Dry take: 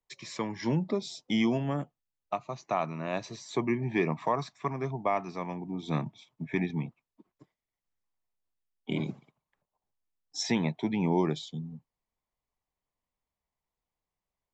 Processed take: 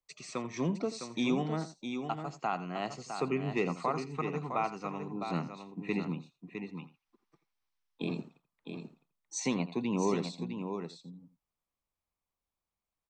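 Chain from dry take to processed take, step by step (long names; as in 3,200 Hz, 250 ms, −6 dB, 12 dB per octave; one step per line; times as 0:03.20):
slap from a distant wall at 16 metres, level −15 dB
change of speed 1.11×
on a send: single-tap delay 658 ms −7.5 dB
on the sum: gain on a spectral selection 0:06.78–0:07.98, 750–6,200 Hz +8 dB
level −3.5 dB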